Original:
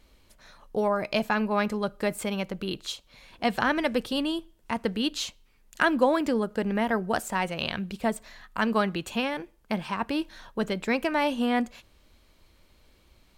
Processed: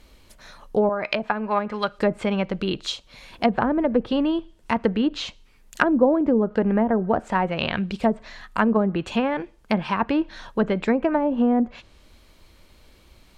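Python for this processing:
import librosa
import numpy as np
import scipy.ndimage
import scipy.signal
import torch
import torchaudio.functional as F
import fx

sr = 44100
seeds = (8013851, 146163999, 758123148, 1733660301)

y = fx.tilt_shelf(x, sr, db=-10.0, hz=900.0, at=(0.89, 1.99))
y = fx.env_lowpass_down(y, sr, base_hz=550.0, full_db=-20.5)
y = y * librosa.db_to_amplitude(7.0)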